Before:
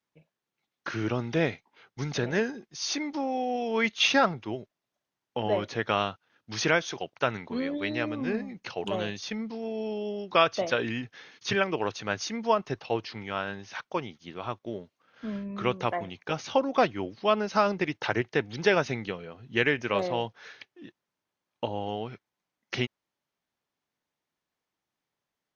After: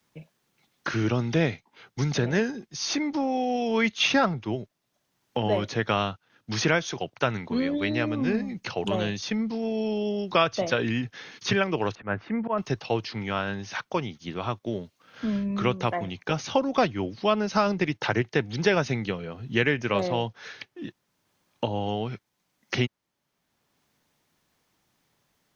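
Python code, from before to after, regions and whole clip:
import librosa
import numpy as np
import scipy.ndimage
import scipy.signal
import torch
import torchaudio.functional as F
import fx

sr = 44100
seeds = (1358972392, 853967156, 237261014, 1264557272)

y = fx.chain(x, sr, fx.lowpass(hz=1900.0, slope=24),
    fx.auto_swell(attack_ms=116.0), at=(11.95, 12.58))
y = fx.bass_treble(y, sr, bass_db=6, treble_db=3)
y = fx.band_squash(y, sr, depth_pct=40)
y = y * 10.0 ** (1.5 / 20.0)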